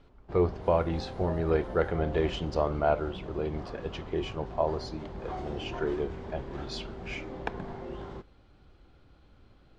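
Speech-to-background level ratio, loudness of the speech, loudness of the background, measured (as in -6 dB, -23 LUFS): 9.0 dB, -32.0 LUFS, -41.0 LUFS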